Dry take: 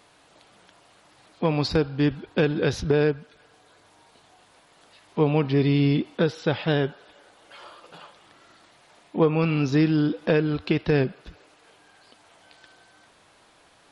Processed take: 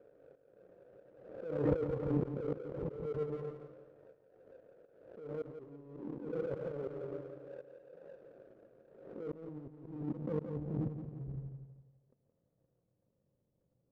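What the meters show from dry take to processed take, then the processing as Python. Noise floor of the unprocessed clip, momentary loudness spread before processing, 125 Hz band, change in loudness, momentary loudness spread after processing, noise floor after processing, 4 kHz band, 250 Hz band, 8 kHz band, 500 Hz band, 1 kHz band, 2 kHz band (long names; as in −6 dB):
−58 dBFS, 5 LU, −16.0 dB, −16.5 dB, 20 LU, −80 dBFS, below −35 dB, −17.0 dB, can't be measured, −14.0 dB, −19.0 dB, −27.0 dB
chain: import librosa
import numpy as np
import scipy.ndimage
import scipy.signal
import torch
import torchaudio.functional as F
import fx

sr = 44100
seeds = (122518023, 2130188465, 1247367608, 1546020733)

p1 = fx.bit_reversed(x, sr, seeds[0], block=16)
p2 = fx.rev_fdn(p1, sr, rt60_s=0.9, lf_ratio=1.4, hf_ratio=0.8, size_ms=45.0, drr_db=8.0)
p3 = fx.filter_sweep_lowpass(p2, sr, from_hz=440.0, to_hz=170.0, start_s=8.46, end_s=11.04, q=1.6)
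p4 = fx.over_compress(p3, sr, threshold_db=-26.0, ratio=-0.5)
p5 = fx.formant_cascade(p4, sr, vowel='e')
p6 = fx.auto_swell(p5, sr, attack_ms=339.0)
p7 = fx.power_curve(p6, sr, exponent=1.4)
p8 = p7 + fx.echo_feedback(p7, sr, ms=171, feedback_pct=34, wet_db=-9, dry=0)
p9 = fx.pre_swell(p8, sr, db_per_s=60.0)
y = F.gain(torch.from_numpy(p9), 13.5).numpy()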